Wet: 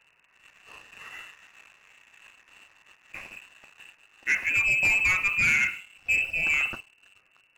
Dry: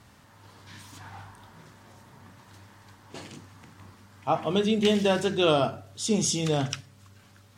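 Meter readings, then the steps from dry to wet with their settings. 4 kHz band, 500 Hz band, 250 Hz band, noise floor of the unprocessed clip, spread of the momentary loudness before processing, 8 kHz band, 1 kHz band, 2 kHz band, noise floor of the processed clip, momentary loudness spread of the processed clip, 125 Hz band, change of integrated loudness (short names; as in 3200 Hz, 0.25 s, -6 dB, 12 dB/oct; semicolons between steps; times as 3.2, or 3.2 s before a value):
-8.0 dB, -24.0 dB, -21.0 dB, -56 dBFS, 22 LU, -6.5 dB, -9.5 dB, +16.0 dB, -65 dBFS, 21 LU, -13.0 dB, +3.0 dB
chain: inverted band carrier 2800 Hz; sample leveller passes 2; gain -5.5 dB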